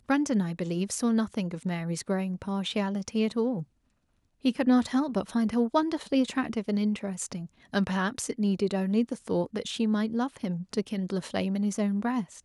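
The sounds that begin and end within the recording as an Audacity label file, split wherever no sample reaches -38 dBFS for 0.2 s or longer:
4.450000	7.460000	sound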